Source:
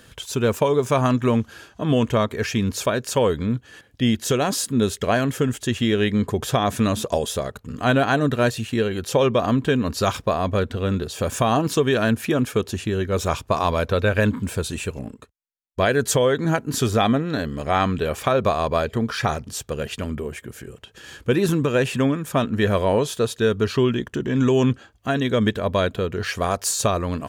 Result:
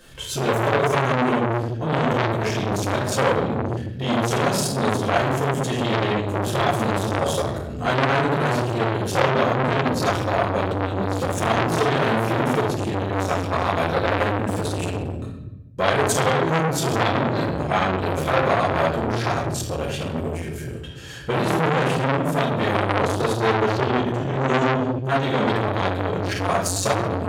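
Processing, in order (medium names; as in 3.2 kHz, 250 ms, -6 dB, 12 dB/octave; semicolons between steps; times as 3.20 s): reverberation RT60 0.90 s, pre-delay 4 ms, DRR -8 dB; transformer saturation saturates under 2.1 kHz; trim -4.5 dB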